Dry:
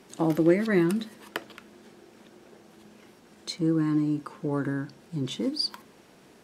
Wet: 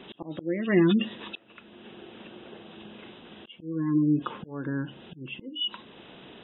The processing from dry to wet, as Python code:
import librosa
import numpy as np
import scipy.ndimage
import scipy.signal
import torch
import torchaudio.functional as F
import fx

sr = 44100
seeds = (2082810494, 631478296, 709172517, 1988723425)

y = fx.freq_compress(x, sr, knee_hz=2500.0, ratio=4.0)
y = fx.auto_swell(y, sr, attack_ms=664.0)
y = fx.spec_gate(y, sr, threshold_db=-30, keep='strong')
y = y * 10.0 ** (6.5 / 20.0)